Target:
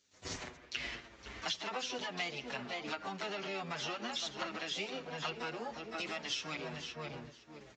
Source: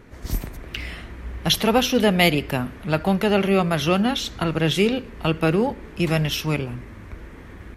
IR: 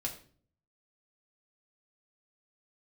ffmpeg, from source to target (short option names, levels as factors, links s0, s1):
-filter_complex "[0:a]aeval=exprs='val(0)+0.00501*(sin(2*PI*50*n/s)+sin(2*PI*2*50*n/s)/2+sin(2*PI*3*50*n/s)/3+sin(2*PI*4*50*n/s)/4+sin(2*PI*5*50*n/s)/5)':c=same,agate=range=0.0224:threshold=0.0501:ratio=3:detection=peak,highpass=f=590:p=1,asplit=2[s0][s1];[s1]adelay=512,lowpass=f=1500:p=1,volume=0.282,asplit=2[s2][s3];[s3]adelay=512,lowpass=f=1500:p=1,volume=0.25,asplit=2[s4][s5];[s5]adelay=512,lowpass=f=1500:p=1,volume=0.25[s6];[s2][s4][s6]amix=inputs=3:normalize=0[s7];[s0][s7]amix=inputs=2:normalize=0,acompressor=threshold=0.0178:ratio=16,asplit=4[s8][s9][s10][s11];[s9]asetrate=52444,aresample=44100,atempo=0.840896,volume=0.141[s12];[s10]asetrate=66075,aresample=44100,atempo=0.66742,volume=0.355[s13];[s11]asetrate=88200,aresample=44100,atempo=0.5,volume=0.2[s14];[s8][s12][s13][s14]amix=inputs=4:normalize=0,acrossover=split=800|5000[s15][s16][s17];[s15]alimiter=level_in=5.31:limit=0.0631:level=0:latency=1:release=62,volume=0.188[s18];[s17]acompressor=mode=upward:threshold=0.00224:ratio=2.5[s19];[s18][s16][s19]amix=inputs=3:normalize=0,aresample=16000,aresample=44100,asplit=2[s20][s21];[s21]adelay=7.4,afreqshift=-0.63[s22];[s20][s22]amix=inputs=2:normalize=1,volume=1.5"